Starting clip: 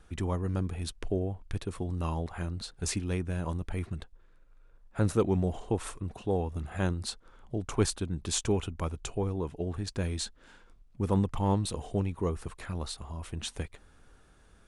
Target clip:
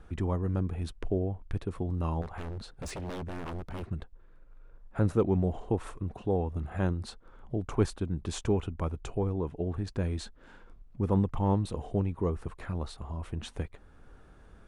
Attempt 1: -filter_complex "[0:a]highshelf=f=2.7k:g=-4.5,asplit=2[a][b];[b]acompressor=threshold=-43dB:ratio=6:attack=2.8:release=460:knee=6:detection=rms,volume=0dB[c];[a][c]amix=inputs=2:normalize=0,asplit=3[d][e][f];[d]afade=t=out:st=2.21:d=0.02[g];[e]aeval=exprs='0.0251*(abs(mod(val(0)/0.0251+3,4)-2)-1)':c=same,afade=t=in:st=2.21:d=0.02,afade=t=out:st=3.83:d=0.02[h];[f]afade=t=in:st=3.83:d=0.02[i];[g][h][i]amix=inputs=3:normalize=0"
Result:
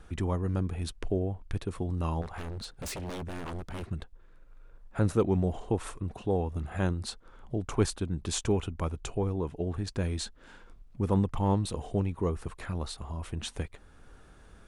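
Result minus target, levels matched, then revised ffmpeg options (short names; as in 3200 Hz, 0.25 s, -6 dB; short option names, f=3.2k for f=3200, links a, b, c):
4000 Hz band +6.0 dB
-filter_complex "[0:a]highshelf=f=2.7k:g=-14,asplit=2[a][b];[b]acompressor=threshold=-43dB:ratio=6:attack=2.8:release=460:knee=6:detection=rms,volume=0dB[c];[a][c]amix=inputs=2:normalize=0,asplit=3[d][e][f];[d]afade=t=out:st=2.21:d=0.02[g];[e]aeval=exprs='0.0251*(abs(mod(val(0)/0.0251+3,4)-2)-1)':c=same,afade=t=in:st=2.21:d=0.02,afade=t=out:st=3.83:d=0.02[h];[f]afade=t=in:st=3.83:d=0.02[i];[g][h][i]amix=inputs=3:normalize=0"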